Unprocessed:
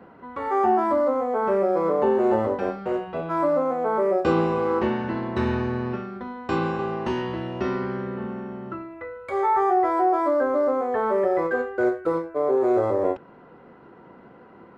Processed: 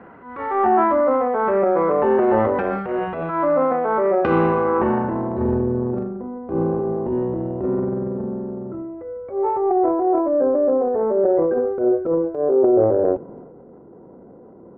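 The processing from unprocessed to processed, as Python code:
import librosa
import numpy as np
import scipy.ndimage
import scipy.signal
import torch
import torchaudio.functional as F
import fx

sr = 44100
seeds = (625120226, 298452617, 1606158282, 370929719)

y = fx.filter_sweep_lowpass(x, sr, from_hz=2000.0, to_hz=510.0, start_s=4.4, end_s=5.63, q=1.3)
y = fx.transient(y, sr, attack_db=-9, sustain_db=7)
y = y * 10.0 ** (3.5 / 20.0)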